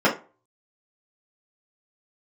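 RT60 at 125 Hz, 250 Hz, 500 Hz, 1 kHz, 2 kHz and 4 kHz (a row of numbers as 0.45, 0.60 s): 0.40, 0.30, 0.35, 0.35, 0.25, 0.20 s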